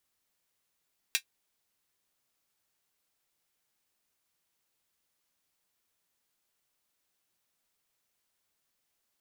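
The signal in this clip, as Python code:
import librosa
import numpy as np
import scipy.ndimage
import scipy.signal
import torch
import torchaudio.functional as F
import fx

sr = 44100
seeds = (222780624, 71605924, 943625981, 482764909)

y = fx.drum_hat(sr, length_s=0.24, from_hz=2300.0, decay_s=0.09)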